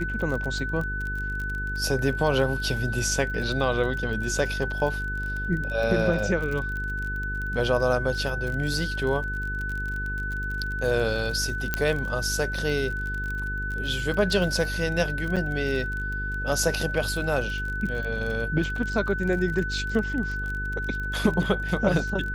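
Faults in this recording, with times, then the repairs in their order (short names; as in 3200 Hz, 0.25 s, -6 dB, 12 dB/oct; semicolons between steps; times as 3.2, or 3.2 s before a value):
buzz 50 Hz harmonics 9 -32 dBFS
crackle 32/s -30 dBFS
tone 1500 Hz -30 dBFS
11.74 pop -9 dBFS
15.36–15.37 gap 6.7 ms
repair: de-click; de-hum 50 Hz, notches 9; notch 1500 Hz, Q 30; interpolate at 15.36, 6.7 ms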